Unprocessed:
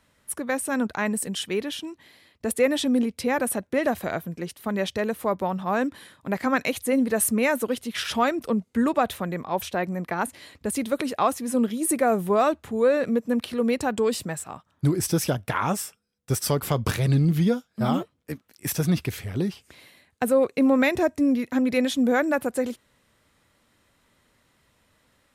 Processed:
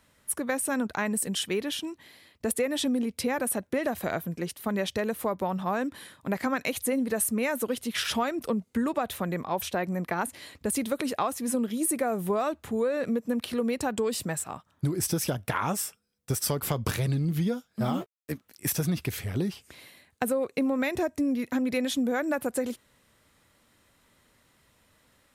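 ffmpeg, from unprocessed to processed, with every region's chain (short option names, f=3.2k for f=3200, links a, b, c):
-filter_complex "[0:a]asettb=1/sr,asplit=3[a][b][c];[a]atrim=end=17.804[d];[b]atrim=start=17.8:end=18.31,asetpts=PTS-STARTPTS,afade=t=in:d=0.004:c=qsin,afade=t=out:st=0.506:d=0.004:c=qsin,aeval=exprs='sgn(val(0))*max(abs(val(0))-0.00473,0)':c=same,asplit=2[e][f];[f]adelay=16,volume=-11.5dB[g];[e][g]amix=inputs=2:normalize=0,atrim=end_sample=22491[h];[c]atrim=start=18.306[i];[d][h]acrossfade=d=0.004:c1=hsin:c2=qsin[j];[j][i]acrossfade=d=0.004:c1=qsin:c2=hsin,highshelf=f=8.5k:g=5,acompressor=threshold=-24dB:ratio=6"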